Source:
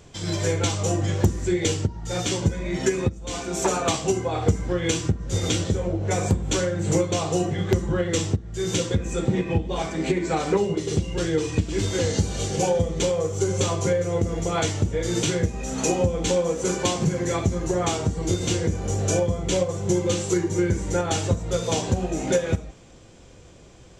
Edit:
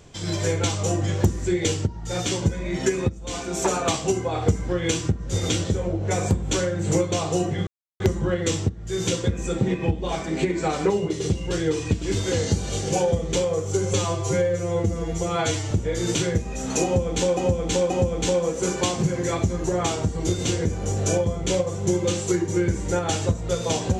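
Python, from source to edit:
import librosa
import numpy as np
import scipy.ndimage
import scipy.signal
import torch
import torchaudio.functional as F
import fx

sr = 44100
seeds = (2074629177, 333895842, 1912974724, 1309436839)

y = fx.edit(x, sr, fx.insert_silence(at_s=7.67, length_s=0.33),
    fx.stretch_span(start_s=13.61, length_s=1.18, factor=1.5),
    fx.repeat(start_s=15.92, length_s=0.53, count=3), tone=tone)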